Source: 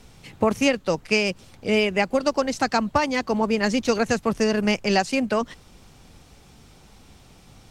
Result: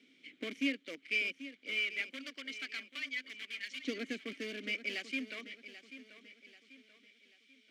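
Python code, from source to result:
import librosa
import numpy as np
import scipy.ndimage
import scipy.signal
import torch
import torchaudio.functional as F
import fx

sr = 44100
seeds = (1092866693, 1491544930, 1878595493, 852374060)

p1 = (np.mod(10.0 ** (16.0 / 20.0) * x + 1.0, 2.0) - 1.0) / 10.0 ** (16.0 / 20.0)
p2 = x + F.gain(torch.from_numpy(p1), -7.0).numpy()
p3 = fx.vowel_filter(p2, sr, vowel='i')
p4 = fx.filter_lfo_highpass(p3, sr, shape='saw_up', hz=0.26, low_hz=390.0, high_hz=2100.0, q=0.84)
y = fx.echo_feedback(p4, sr, ms=787, feedback_pct=42, wet_db=-13.5)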